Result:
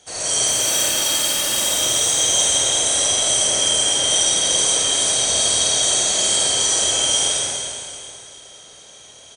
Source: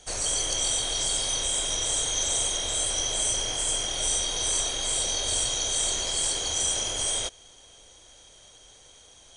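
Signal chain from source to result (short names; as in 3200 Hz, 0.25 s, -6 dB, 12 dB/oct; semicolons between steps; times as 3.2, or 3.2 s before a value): 0.47–1.6 minimum comb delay 3.4 ms; HPF 100 Hz 12 dB/oct; reverse bouncing-ball echo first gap 50 ms, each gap 1.6×, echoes 5; reverb RT60 2.2 s, pre-delay 20 ms, DRR -6.5 dB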